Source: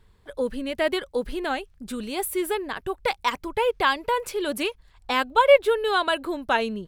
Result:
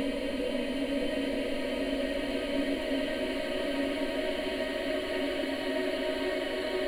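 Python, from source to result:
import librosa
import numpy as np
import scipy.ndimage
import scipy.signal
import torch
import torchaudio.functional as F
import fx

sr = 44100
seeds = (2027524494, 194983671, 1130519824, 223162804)

y = fx.level_steps(x, sr, step_db=17)
y = fx.paulstretch(y, sr, seeds[0], factor=21.0, window_s=1.0, from_s=0.57)
y = y * 10.0 ** (4.5 / 20.0)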